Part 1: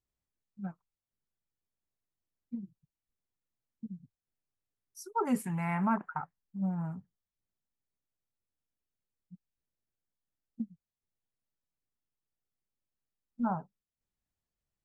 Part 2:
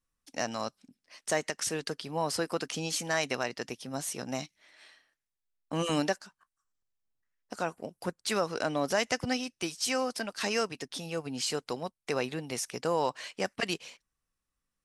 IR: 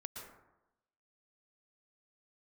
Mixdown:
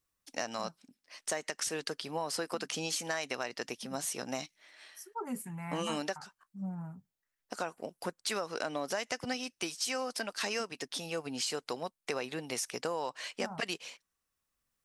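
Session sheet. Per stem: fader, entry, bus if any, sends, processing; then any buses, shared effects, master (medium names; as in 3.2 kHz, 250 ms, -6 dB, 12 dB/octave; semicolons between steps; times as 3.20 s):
-1.0 dB, 0.00 s, no send, treble shelf 6.4 kHz +11.5 dB; auto duck -7 dB, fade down 0.80 s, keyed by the second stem
+1.5 dB, 0.00 s, no send, bass shelf 180 Hz -12 dB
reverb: none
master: compression 6:1, threshold -31 dBFS, peak gain reduction 9 dB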